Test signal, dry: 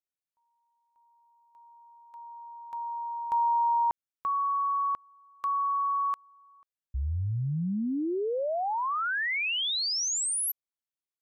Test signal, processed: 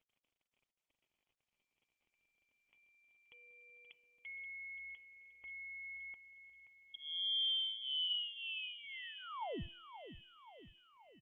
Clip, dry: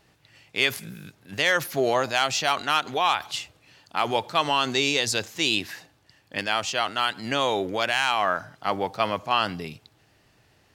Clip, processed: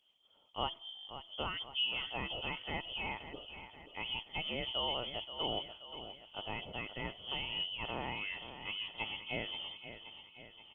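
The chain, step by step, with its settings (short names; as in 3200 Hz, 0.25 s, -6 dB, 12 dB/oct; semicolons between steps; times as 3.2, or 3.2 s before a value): Wiener smoothing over 9 samples; fixed phaser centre 2200 Hz, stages 4; de-hum 328.9 Hz, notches 9; small resonant body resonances 490/2400 Hz, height 6 dB, ringing for 75 ms; crackle 31/s -47 dBFS; fixed phaser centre 330 Hz, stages 8; feedback echo 0.528 s, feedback 55%, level -11 dB; inverted band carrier 3300 Hz; gain -5.5 dB; Opus 24 kbps 48000 Hz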